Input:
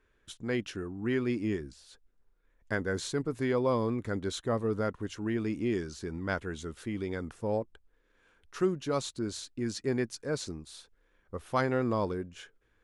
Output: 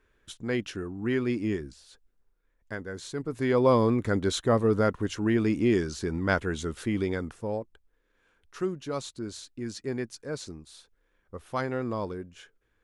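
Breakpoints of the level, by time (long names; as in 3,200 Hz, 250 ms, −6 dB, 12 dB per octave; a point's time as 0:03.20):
0:01.66 +2.5 dB
0:02.96 −6 dB
0:03.66 +7 dB
0:07.02 +7 dB
0:07.60 −2 dB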